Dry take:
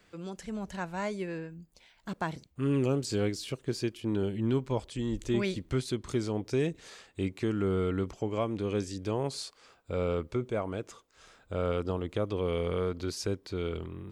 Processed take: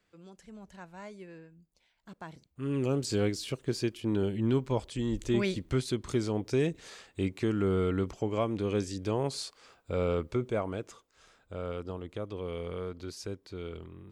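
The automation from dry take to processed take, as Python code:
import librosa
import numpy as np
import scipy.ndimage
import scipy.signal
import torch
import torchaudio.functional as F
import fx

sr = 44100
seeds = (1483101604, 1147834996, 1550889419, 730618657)

y = fx.gain(x, sr, db=fx.line((2.23, -11.5), (3.04, 1.0), (10.56, 1.0), (11.6, -6.5)))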